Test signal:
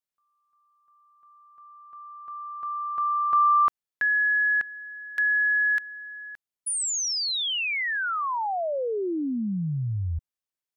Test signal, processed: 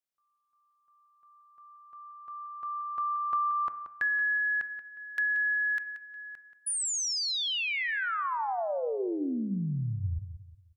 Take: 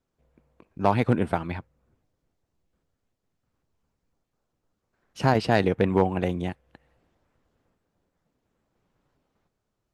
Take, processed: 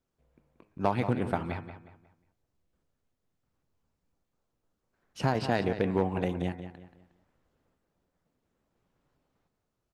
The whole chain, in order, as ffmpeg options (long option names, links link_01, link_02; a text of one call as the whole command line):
ffmpeg -i in.wav -filter_complex "[0:a]bandreject=frequency=104.8:width_type=h:width=4,bandreject=frequency=209.6:width_type=h:width=4,bandreject=frequency=314.4:width_type=h:width=4,bandreject=frequency=419.2:width_type=h:width=4,bandreject=frequency=524:width_type=h:width=4,bandreject=frequency=628.8:width_type=h:width=4,bandreject=frequency=733.6:width_type=h:width=4,bandreject=frequency=838.4:width_type=h:width=4,bandreject=frequency=943.2:width_type=h:width=4,bandreject=frequency=1048:width_type=h:width=4,bandreject=frequency=1152.8:width_type=h:width=4,bandreject=frequency=1257.6:width_type=h:width=4,bandreject=frequency=1362.4:width_type=h:width=4,bandreject=frequency=1467.2:width_type=h:width=4,bandreject=frequency=1572:width_type=h:width=4,bandreject=frequency=1676.8:width_type=h:width=4,bandreject=frequency=1781.6:width_type=h:width=4,bandreject=frequency=1886.4:width_type=h:width=4,bandreject=frequency=1991.2:width_type=h:width=4,bandreject=frequency=2096:width_type=h:width=4,bandreject=frequency=2200.8:width_type=h:width=4,bandreject=frequency=2305.6:width_type=h:width=4,bandreject=frequency=2410.4:width_type=h:width=4,bandreject=frequency=2515.2:width_type=h:width=4,acompressor=threshold=-23dB:ratio=6:attack=57:release=380:knee=6:detection=peak,asplit=2[link_01][link_02];[link_02]adelay=180,lowpass=frequency=4500:poles=1,volume=-10.5dB,asplit=2[link_03][link_04];[link_04]adelay=180,lowpass=frequency=4500:poles=1,volume=0.35,asplit=2[link_05][link_06];[link_06]adelay=180,lowpass=frequency=4500:poles=1,volume=0.35,asplit=2[link_07][link_08];[link_08]adelay=180,lowpass=frequency=4500:poles=1,volume=0.35[link_09];[link_03][link_05][link_07][link_09]amix=inputs=4:normalize=0[link_10];[link_01][link_10]amix=inputs=2:normalize=0,volume=-3dB" out.wav